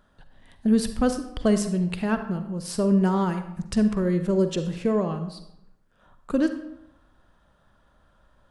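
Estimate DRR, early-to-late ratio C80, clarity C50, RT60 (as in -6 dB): 8.0 dB, 11.5 dB, 9.0 dB, 0.80 s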